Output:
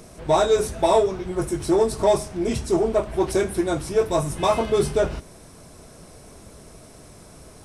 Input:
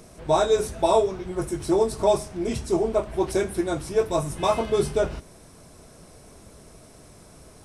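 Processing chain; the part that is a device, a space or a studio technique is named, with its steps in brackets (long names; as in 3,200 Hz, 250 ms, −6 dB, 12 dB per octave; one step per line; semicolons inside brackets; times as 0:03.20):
parallel distortion (in parallel at −7 dB: hard clipping −21.5 dBFS, distortion −8 dB)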